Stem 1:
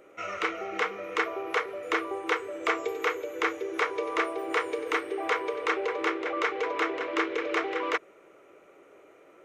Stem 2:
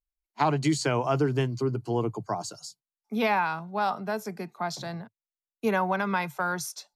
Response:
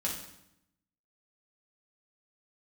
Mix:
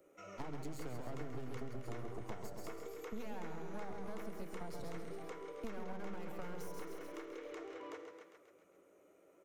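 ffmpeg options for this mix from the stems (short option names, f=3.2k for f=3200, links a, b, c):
-filter_complex "[0:a]bass=f=250:g=1,treble=f=4k:g=8,volume=-14dB,asplit=3[a][b][c];[b]volume=-4.5dB[d];[c]volume=-7dB[e];[1:a]acompressor=threshold=-28dB:ratio=6,aeval=exprs='max(val(0),0)':c=same,volume=0dB,asplit=2[f][g];[g]volume=-6dB[h];[2:a]atrim=start_sample=2205[i];[d][i]afir=irnorm=-1:irlink=0[j];[e][h]amix=inputs=2:normalize=0,aecho=0:1:134|268|402|536|670|804|938|1072:1|0.53|0.281|0.149|0.0789|0.0418|0.0222|0.0117[k];[a][f][j][k]amix=inputs=4:normalize=0,equalizer=f=2.5k:w=0.37:g=-8,acrossover=split=92|830[l][m][n];[l]acompressor=threshold=-43dB:ratio=4[o];[m]acompressor=threshold=-46dB:ratio=4[p];[n]acompressor=threshold=-56dB:ratio=4[q];[o][p][q]amix=inputs=3:normalize=0"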